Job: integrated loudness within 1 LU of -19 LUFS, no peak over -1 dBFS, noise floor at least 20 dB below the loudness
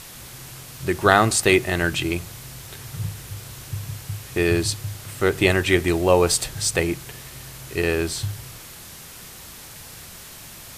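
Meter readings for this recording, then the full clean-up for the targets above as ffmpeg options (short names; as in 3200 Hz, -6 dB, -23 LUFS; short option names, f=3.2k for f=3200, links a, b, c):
noise floor -41 dBFS; noise floor target -42 dBFS; loudness -21.5 LUFS; peak -1.5 dBFS; loudness target -19.0 LUFS
-> -af "afftdn=nr=6:nf=-41"
-af "volume=2.5dB,alimiter=limit=-1dB:level=0:latency=1"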